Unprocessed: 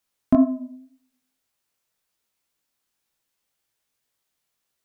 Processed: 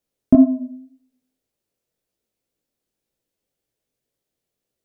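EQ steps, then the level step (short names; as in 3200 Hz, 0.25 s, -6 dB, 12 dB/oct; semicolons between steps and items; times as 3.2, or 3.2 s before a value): resonant low shelf 710 Hz +10 dB, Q 1.5; -5.5 dB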